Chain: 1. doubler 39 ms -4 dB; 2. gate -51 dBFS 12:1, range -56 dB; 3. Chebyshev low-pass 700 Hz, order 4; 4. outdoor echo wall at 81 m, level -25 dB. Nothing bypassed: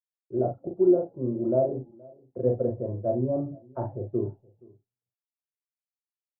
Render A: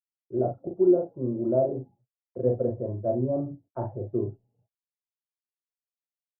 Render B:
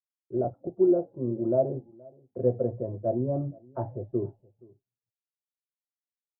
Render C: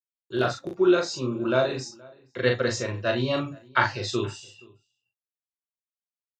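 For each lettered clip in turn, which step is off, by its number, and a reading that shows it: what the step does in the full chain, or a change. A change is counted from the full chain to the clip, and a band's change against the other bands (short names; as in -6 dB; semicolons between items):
4, echo-to-direct -26.5 dB to none; 1, loudness change -1.5 LU; 3, 1 kHz band +8.0 dB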